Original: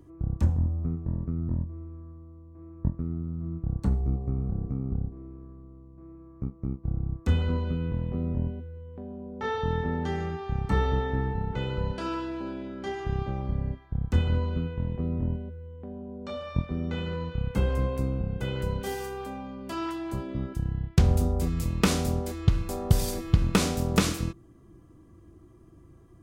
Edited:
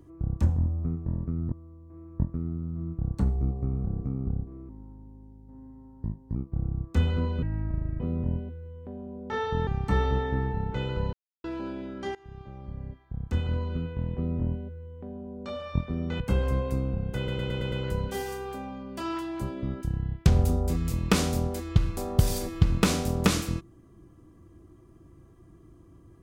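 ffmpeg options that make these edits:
-filter_complex "[0:a]asplit=16[a][b][c][d][e][f][g][h][i][j][k][l][m][n][o][p];[a]atrim=end=1.522[q];[b]atrim=start=2.168:end=5.344[r];[c]atrim=start=5.34:end=6.67,asetpts=PTS-STARTPTS,asetrate=35280,aresample=44100,atrim=end_sample=73316,asetpts=PTS-STARTPTS[s];[d]atrim=start=6.666:end=7.744[t];[e]atrim=start=7.74:end=8.11,asetpts=PTS-STARTPTS,asetrate=28224,aresample=44100,atrim=end_sample=25495,asetpts=PTS-STARTPTS[u];[f]atrim=start=8.106:end=9.782[v];[g]atrim=start=10.478:end=11.94,asetpts=PTS-STARTPTS,afade=t=out:st=1.458:d=0.004:c=hsin[w];[h]atrim=start=11.94:end=12.25,asetpts=PTS-STARTPTS,volume=0[x];[i]atrim=start=12.25:end=12.96,asetpts=PTS-STARTPTS,afade=t=in:d=0.004:c=hsin,afade=t=out:st=0.706:d=0.004:c=hsin:silence=0.0944061[y];[j]atrim=start=12.96:end=17.012,asetpts=PTS-STARTPTS,afade=t=in:d=2.06:silence=0.0944061[z];[k]atrim=start=17.468:end=18.552[aa];[l]atrim=start=18.438:end=18.552[ab];[m]atrim=start=18.438:end=18.552[ac];[n]atrim=start=18.438:end=18.552[ad];[o]atrim=start=18.438:end=18.552[ae];[p]atrim=start=18.438[af];[q][r]acrossfade=d=0.004:c1=hsin:c2=hsin[ag];[ag][s]acrossfade=d=0.004:c1=hsin:c2=hsin[ah];[ah][t]acrossfade=d=0.004:c1=hsin:c2=hsin[ai];[ai][u]acrossfade=d=0.004:c1=hsin:c2=hsin[aj];[aj][v]acrossfade=d=0.004:c1=hsin:c2=hsin[ak];[w][x][y][z]concat=n=4:v=0:a=1[al];[ak][al]acrossfade=d=0.004:c1=hsin:c2=hsin[am];[am][aa]acrossfade=d=0.004:c1=hsin:c2=hsin[an];[an][ab]acrossfade=d=0.004:c1=hsin:c2=hsin[ao];[ao][ac]acrossfade=d=0.004:c1=hsin:c2=hsin[ap];[ap][ad]acrossfade=d=0.004:c1=hsin:c2=hsin[aq];[aq][ae]acrossfade=d=0.004:c1=hsin:c2=hsin[ar];[ar][af]acrossfade=d=0.004:c1=hsin:c2=hsin"

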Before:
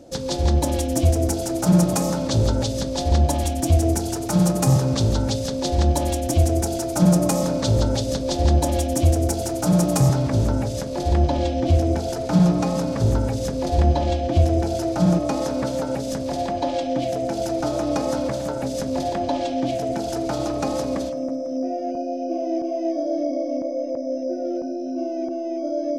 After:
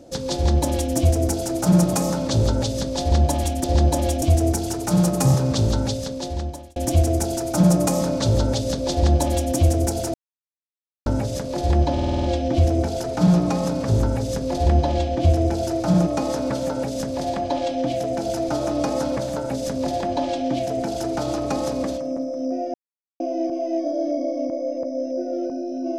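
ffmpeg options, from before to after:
-filter_complex "[0:a]asplit=14[a][b][c][d][e][f][g][h][i][j][k][l][m][n];[a]atrim=end=3.642[o];[b]atrim=start=8.338:end=8.922[p];[c]atrim=start=3.638:end=6.18,asetpts=PTS-STARTPTS,afade=t=out:st=1.572:d=0.97[q];[d]atrim=start=6.18:end=9.56,asetpts=PTS-STARTPTS,afade=t=in:d=0.004:c=hsin,afade=t=out:st=3.376:d=0.004:c=hsin[r];[e]atrim=start=9.56:end=10.48,asetpts=PTS-STARTPTS,volume=0[s];[f]atrim=start=10.48:end=11.402,asetpts=PTS-STARTPTS,afade=t=in:d=0.004:c=hsin[t];[g]atrim=start=11.348:end=11.402[u];[h]atrim=start=11.348:end=11.402[v];[i]atrim=start=11.348:end=11.402[w];[j]atrim=start=11.348:end=11.402[x];[k]atrim=start=11.348:end=11.402[y];[l]atrim=start=11.348:end=21.86,asetpts=PTS-STARTPTS,afade=t=out:st=10.508:d=0.004:c=hsin[z];[m]atrim=start=21.86:end=22.32,asetpts=PTS-STARTPTS,volume=0[aa];[n]atrim=start=22.32,asetpts=PTS-STARTPTS,afade=t=in:d=0.004:c=hsin[ab];[o][p]acrossfade=d=0.004:c1=hsin:c2=hsin[ac];[q][r][s][t]concat=n=4:v=0:a=1[ad];[ac][ad]acrossfade=d=0.004:c1=hsin:c2=hsin[ae];[ae][u]acrossfade=d=0.004:c1=hsin:c2=hsin[af];[af][v]acrossfade=d=0.004:c1=hsin:c2=hsin[ag];[ag][w]acrossfade=d=0.004:c1=hsin:c2=hsin[ah];[ah][x]acrossfade=d=0.004:c1=hsin:c2=hsin[ai];[ai][y]acrossfade=d=0.004:c1=hsin:c2=hsin[aj];[z][aa][ab]concat=n=3:v=0:a=1[ak];[aj][ak]acrossfade=d=0.004:c1=hsin:c2=hsin"

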